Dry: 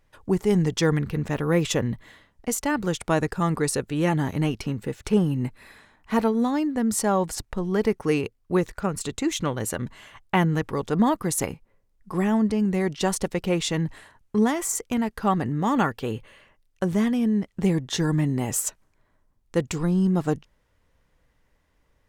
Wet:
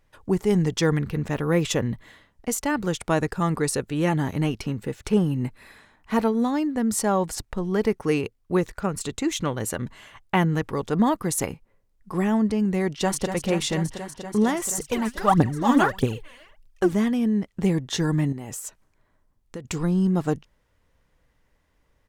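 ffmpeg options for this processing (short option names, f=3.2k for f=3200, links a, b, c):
-filter_complex "[0:a]asplit=2[a][b];[b]afade=t=in:st=12.8:d=0.01,afade=t=out:st=13.28:d=0.01,aecho=0:1:240|480|720|960|1200|1440|1680|1920|2160|2400|2640|2880:0.375837|0.319462|0.271543|0.230811|0.196189|0.166761|0.141747|0.120485|0.102412|0.0870503|0.0739928|0.0628939[c];[a][c]amix=inputs=2:normalize=0,asettb=1/sr,asplit=3[d][e][f];[d]atrim=end=14.784[g];[e]atrim=start=14.78:end=16.93,asetpts=PTS-STARTPTS,afade=t=in:d=0.004:c=qsin,afade=t=out:st=2.146:d=0.004:c=qsin,aphaser=in_gain=1:out_gain=1:delay=4.3:decay=0.77:speed=1.6:type=triangular[h];[f]atrim=start=16.926[i];[g][h]acrossfade=d=0.004:c1=hsin:c2=qsin[j];[j][i]acrossfade=d=0.004:c1=qsin:c2=hsin,asettb=1/sr,asplit=3[k][l][m];[k]atrim=end=18.324[n];[l]atrim=start=18.32:end=19.65,asetpts=PTS-STARTPTS,afade=t=in:d=0.004:c=qsin,afade=t=out:st=1.326:d=0.004:c=qsin,acompressor=threshold=-31dB:ratio=6:attack=3.2:release=140:knee=1:detection=peak[o];[m]atrim=start=19.646[p];[n][o]acrossfade=d=0.004:c1=hsin:c2=qsin[q];[q][p]acrossfade=d=0.004:c1=qsin:c2=hsin"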